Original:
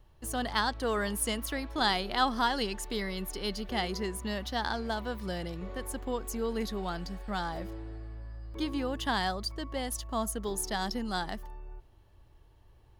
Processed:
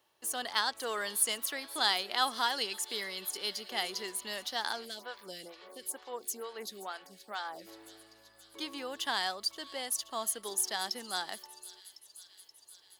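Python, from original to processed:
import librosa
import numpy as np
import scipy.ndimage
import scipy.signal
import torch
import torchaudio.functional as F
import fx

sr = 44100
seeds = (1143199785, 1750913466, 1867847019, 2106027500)

y = scipy.signal.sosfilt(scipy.signal.butter(2, 400.0, 'highpass', fs=sr, output='sos'), x)
y = fx.high_shelf(y, sr, hz=2200.0, db=9.5)
y = fx.echo_wet_highpass(y, sr, ms=527, feedback_pct=69, hz=3200.0, wet_db=-15.0)
y = fx.stagger_phaser(y, sr, hz=2.2, at=(4.84, 7.66), fade=0.02)
y = y * 10.0 ** (-5.0 / 20.0)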